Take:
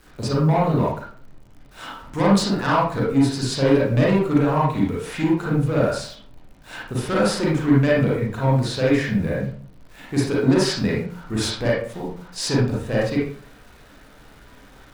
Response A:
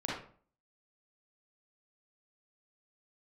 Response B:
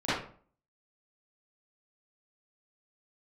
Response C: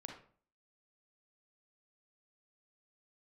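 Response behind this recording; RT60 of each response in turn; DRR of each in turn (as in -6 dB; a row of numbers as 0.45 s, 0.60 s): A; 0.45 s, 0.45 s, 0.45 s; -5.5 dB, -15.5 dB, 1.5 dB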